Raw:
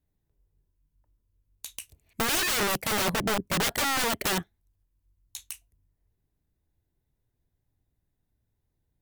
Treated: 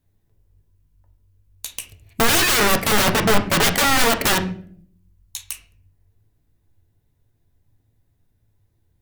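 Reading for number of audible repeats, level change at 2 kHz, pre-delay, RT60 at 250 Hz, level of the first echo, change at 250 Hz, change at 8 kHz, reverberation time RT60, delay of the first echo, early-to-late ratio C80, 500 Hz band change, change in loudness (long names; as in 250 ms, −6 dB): no echo audible, +9.5 dB, 7 ms, 0.95 s, no echo audible, +10.0 dB, +8.5 dB, 0.55 s, no echo audible, 15.5 dB, +10.0 dB, +8.5 dB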